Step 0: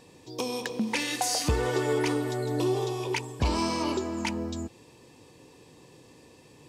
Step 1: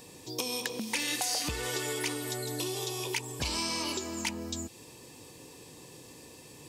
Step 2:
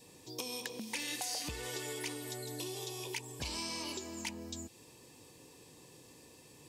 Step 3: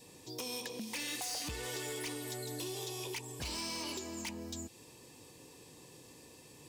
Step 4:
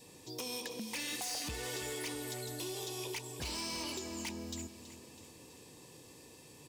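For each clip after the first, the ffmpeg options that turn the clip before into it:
-filter_complex "[0:a]aemphasis=mode=production:type=50kf,acrossover=split=1900|4000[a][b][c];[a]acompressor=threshold=-38dB:ratio=4[d];[b]acompressor=threshold=-36dB:ratio=4[e];[c]acompressor=threshold=-38dB:ratio=4[f];[d][e][f]amix=inputs=3:normalize=0,volume=1.5dB"
-af "adynamicequalizer=threshold=0.001:dfrequency=1300:dqfactor=4.2:tfrequency=1300:tqfactor=4.2:attack=5:release=100:ratio=0.375:range=3:mode=cutabove:tftype=bell,volume=-7dB"
-af "asoftclip=type=hard:threshold=-37dB,volume=1.5dB"
-af "aecho=1:1:326|652|978|1304|1630:0.211|0.112|0.0594|0.0315|0.0167"

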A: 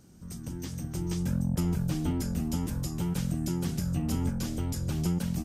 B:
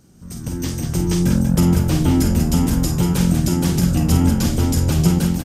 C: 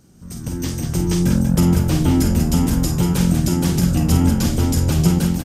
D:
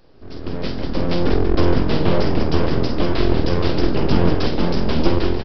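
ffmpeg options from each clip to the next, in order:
-af "dynaudnorm=f=150:g=5:m=9dB,aecho=1:1:49.56|189.5:0.447|0.447,volume=4dB"
-af anull
-af "highpass=f=55:p=1,aresample=11025,aeval=exprs='abs(val(0))':c=same,aresample=44100,volume=3dB"

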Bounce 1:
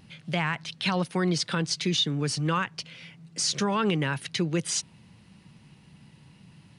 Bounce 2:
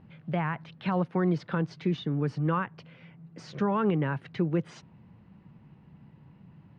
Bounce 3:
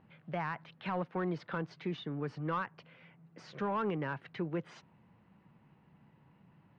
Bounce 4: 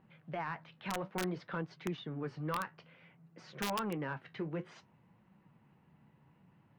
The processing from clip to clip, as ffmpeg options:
-af "lowpass=1.3k"
-filter_complex "[0:a]asplit=2[a][b];[b]highpass=f=720:p=1,volume=11dB,asoftclip=type=tanh:threshold=-16dB[c];[a][c]amix=inputs=2:normalize=0,lowpass=f=2.5k:p=1,volume=-6dB,volume=-7.5dB"
-af "flanger=delay=5.3:depth=8.8:regen=-58:speed=0.57:shape=sinusoidal,aeval=exprs='(mod(29.9*val(0)+1,2)-1)/29.9':c=same,volume=2dB"

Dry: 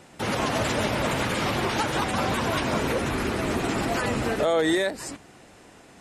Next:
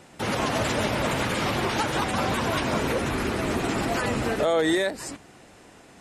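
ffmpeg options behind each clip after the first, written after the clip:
-af anull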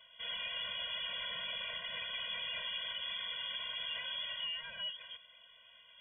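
-af "asoftclip=type=tanh:threshold=-28.5dB,lowpass=f=3k:t=q:w=0.5098,lowpass=f=3k:t=q:w=0.6013,lowpass=f=3k:t=q:w=0.9,lowpass=f=3k:t=q:w=2.563,afreqshift=-3500,afftfilt=real='re*eq(mod(floor(b*sr/1024/230),2),0)':imag='im*eq(mod(floor(b*sr/1024/230),2),0)':win_size=1024:overlap=0.75,volume=-6.5dB"

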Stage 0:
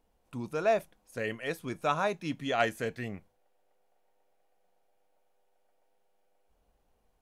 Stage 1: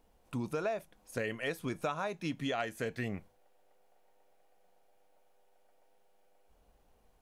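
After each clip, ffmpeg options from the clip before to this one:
-af "acompressor=threshold=-36dB:ratio=10,volume=4.5dB"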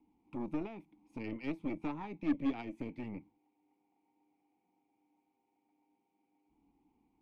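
-filter_complex "[0:a]acrossover=split=280|550|4800[a][b][c][d];[a]aeval=exprs='0.0335*sin(PI/2*2.51*val(0)/0.0335)':c=same[e];[e][b][c][d]amix=inputs=4:normalize=0,asplit=3[f][g][h];[f]bandpass=f=300:t=q:w=8,volume=0dB[i];[g]bandpass=f=870:t=q:w=8,volume=-6dB[j];[h]bandpass=f=2.24k:t=q:w=8,volume=-9dB[k];[i][j][k]amix=inputs=3:normalize=0,aeval=exprs='0.0422*(cos(1*acos(clip(val(0)/0.0422,-1,1)))-cos(1*PI/2))+0.00335*(cos(8*acos(clip(val(0)/0.0422,-1,1)))-cos(8*PI/2))':c=same,volume=5.5dB"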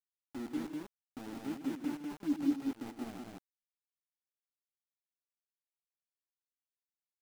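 -af "bandpass=f=260:t=q:w=1.8:csg=0,aeval=exprs='val(0)*gte(abs(val(0)),0.00708)':c=same,aecho=1:1:99.13|160.3|198.3:0.282|0.251|0.794"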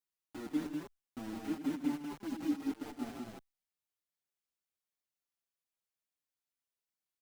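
-filter_complex "[0:a]asplit=2[a][b];[b]adelay=5.6,afreqshift=-0.89[c];[a][c]amix=inputs=2:normalize=1,volume=4dB"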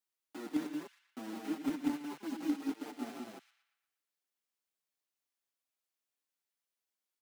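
-filter_complex "[0:a]acrossover=split=180|1600[a][b][c];[a]acrusher=bits=6:mix=0:aa=0.000001[d];[c]asplit=2[e][f];[f]adelay=118,lowpass=f=4.2k:p=1,volume=-7.5dB,asplit=2[g][h];[h]adelay=118,lowpass=f=4.2k:p=1,volume=0.54,asplit=2[i][j];[j]adelay=118,lowpass=f=4.2k:p=1,volume=0.54,asplit=2[k][l];[l]adelay=118,lowpass=f=4.2k:p=1,volume=0.54,asplit=2[m][n];[n]adelay=118,lowpass=f=4.2k:p=1,volume=0.54,asplit=2[o][p];[p]adelay=118,lowpass=f=4.2k:p=1,volume=0.54,asplit=2[q][r];[r]adelay=118,lowpass=f=4.2k:p=1,volume=0.54[s];[e][g][i][k][m][o][q][s]amix=inputs=8:normalize=0[t];[d][b][t]amix=inputs=3:normalize=0,volume=1dB"

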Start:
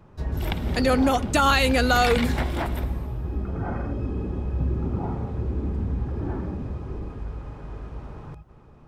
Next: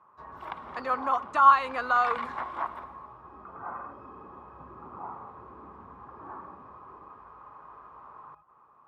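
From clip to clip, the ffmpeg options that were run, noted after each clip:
-af "bandpass=f=1.1k:t=q:w=7.6:csg=0,volume=9dB"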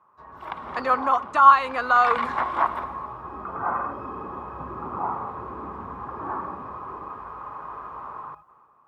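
-af "dynaudnorm=f=110:g=11:m=13dB,volume=-1dB"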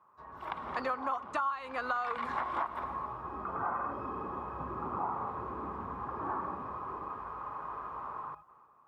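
-af "acompressor=threshold=-26dB:ratio=10,volume=-4dB"

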